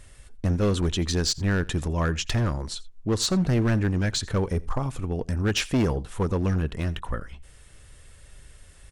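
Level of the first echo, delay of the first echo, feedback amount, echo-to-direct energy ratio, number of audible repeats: -22.5 dB, 85 ms, no steady repeat, -22.5 dB, 1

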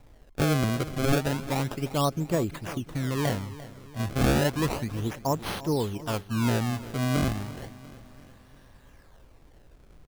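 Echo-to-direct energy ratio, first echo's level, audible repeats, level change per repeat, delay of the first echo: -15.0 dB, -16.5 dB, 4, -5.5 dB, 0.346 s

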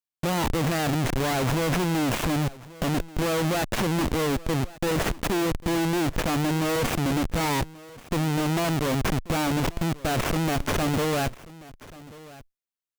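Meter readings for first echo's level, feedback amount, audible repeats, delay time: -20.0 dB, no steady repeat, 1, 1.135 s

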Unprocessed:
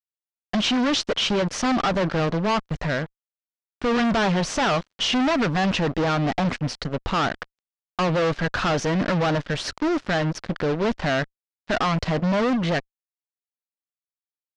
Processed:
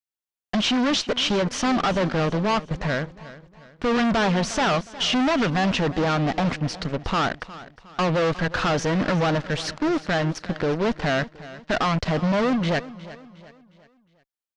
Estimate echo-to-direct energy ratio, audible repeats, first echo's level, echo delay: -16.0 dB, 3, -17.0 dB, 0.36 s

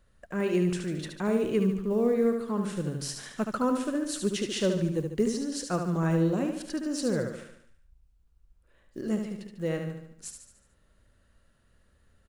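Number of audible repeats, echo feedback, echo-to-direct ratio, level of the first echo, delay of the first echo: 5, 51%, -4.5 dB, -6.0 dB, 73 ms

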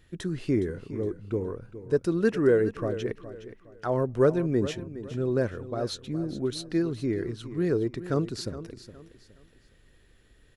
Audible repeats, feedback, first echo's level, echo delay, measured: 3, 31%, -13.5 dB, 0.415 s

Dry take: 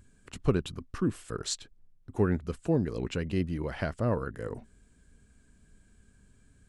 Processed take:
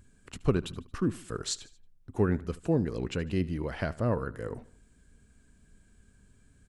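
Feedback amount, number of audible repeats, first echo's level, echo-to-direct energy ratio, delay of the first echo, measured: 46%, 3, -20.0 dB, -19.0 dB, 75 ms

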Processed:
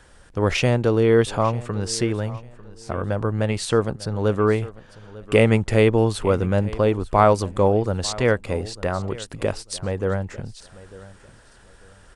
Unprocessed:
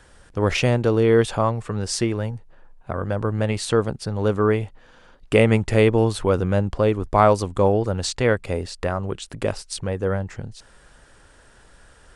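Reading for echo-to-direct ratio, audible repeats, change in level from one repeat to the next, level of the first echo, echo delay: -18.5 dB, 2, -11.5 dB, -19.0 dB, 0.897 s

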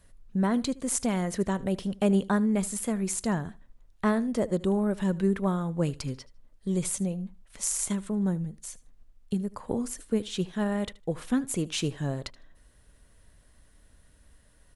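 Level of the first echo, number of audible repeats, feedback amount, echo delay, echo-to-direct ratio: -20.5 dB, 2, 19%, 77 ms, -20.5 dB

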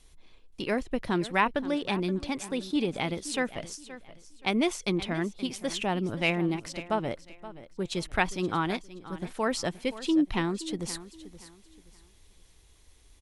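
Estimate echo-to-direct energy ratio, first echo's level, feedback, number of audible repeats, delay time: -15.0 dB, -15.5 dB, 29%, 2, 0.524 s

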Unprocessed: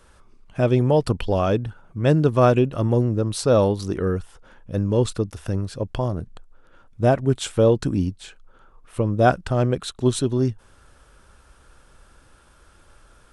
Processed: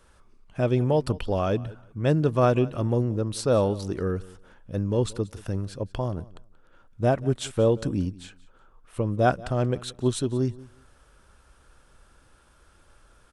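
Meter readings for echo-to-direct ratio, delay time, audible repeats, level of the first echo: -20.5 dB, 0.18 s, 2, -20.5 dB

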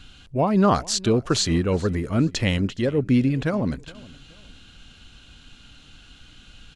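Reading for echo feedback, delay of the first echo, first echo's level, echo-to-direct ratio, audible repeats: 33%, 0.419 s, -22.0 dB, -21.5 dB, 2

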